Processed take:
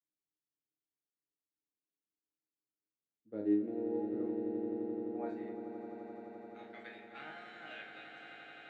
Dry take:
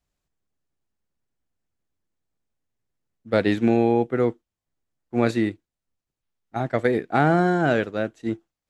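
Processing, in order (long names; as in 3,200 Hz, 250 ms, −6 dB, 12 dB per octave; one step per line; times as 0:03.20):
band-pass filter sweep 320 Hz → 2,800 Hz, 0:04.75–0:06.24
resonators tuned to a chord G#2 sus4, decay 0.44 s
echo that builds up and dies away 86 ms, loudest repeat 8, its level −11 dB
level +2 dB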